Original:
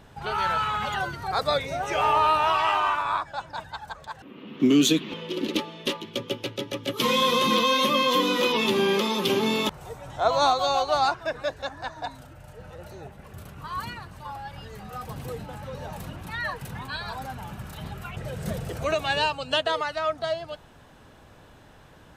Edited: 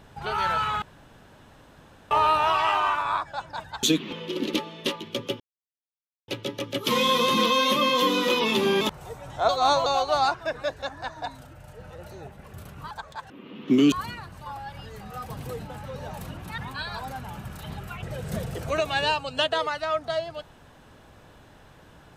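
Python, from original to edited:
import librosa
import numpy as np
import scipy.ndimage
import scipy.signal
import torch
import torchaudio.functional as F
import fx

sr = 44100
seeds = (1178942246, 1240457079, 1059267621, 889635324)

y = fx.edit(x, sr, fx.room_tone_fill(start_s=0.82, length_s=1.29),
    fx.move(start_s=3.83, length_s=1.01, to_s=13.71),
    fx.insert_silence(at_s=6.41, length_s=0.88),
    fx.cut(start_s=8.94, length_s=0.67),
    fx.reverse_span(start_s=10.29, length_s=0.37),
    fx.cut(start_s=16.37, length_s=0.35), tone=tone)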